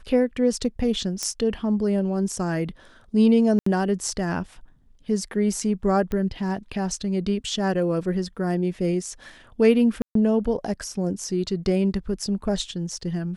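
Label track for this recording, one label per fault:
1.230000	1.230000	click −12 dBFS
3.590000	3.660000	drop-out 74 ms
6.120000	6.120000	click −17 dBFS
10.020000	10.150000	drop-out 133 ms

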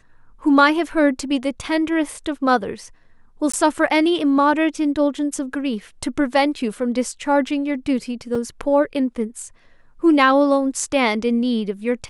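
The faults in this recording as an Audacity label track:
3.520000	3.540000	drop-out 15 ms
8.350000	8.350000	drop-out 3.9 ms

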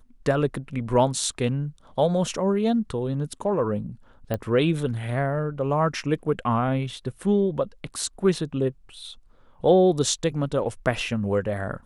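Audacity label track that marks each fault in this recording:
4.340000	4.340000	click −14 dBFS

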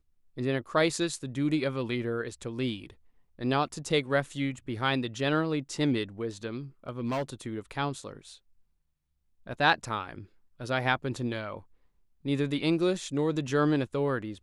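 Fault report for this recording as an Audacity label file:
6.890000	7.230000	clipping −26.5 dBFS

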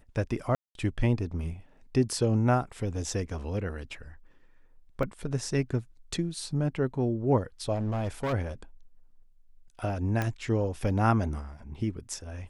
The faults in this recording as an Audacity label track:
0.550000	0.750000	drop-out 202 ms
5.030000	5.030000	drop-out 2 ms
7.740000	8.340000	clipping −26.5 dBFS
10.220000	10.220000	click −16 dBFS

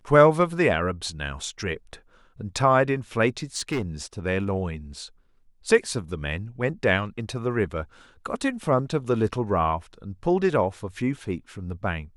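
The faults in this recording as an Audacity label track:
3.560000	3.820000	clipping −22 dBFS

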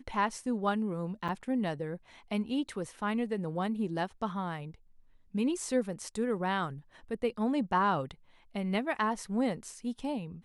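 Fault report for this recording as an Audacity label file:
1.280000	1.290000	drop-out 6.8 ms

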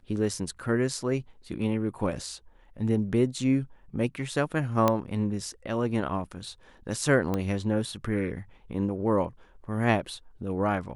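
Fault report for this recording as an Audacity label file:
4.880000	4.880000	click −9 dBFS
7.340000	7.340000	click −16 dBFS

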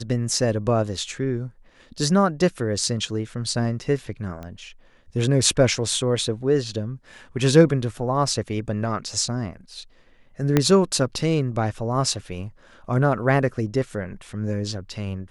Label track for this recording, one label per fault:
4.430000	4.430000	click −23 dBFS
10.570000	10.570000	click −4 dBFS

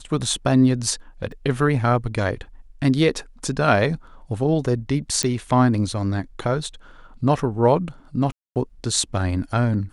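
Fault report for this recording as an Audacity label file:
1.320000	1.320000	drop-out 3.7 ms
5.230000	5.230000	click −6 dBFS
8.320000	8.560000	drop-out 238 ms

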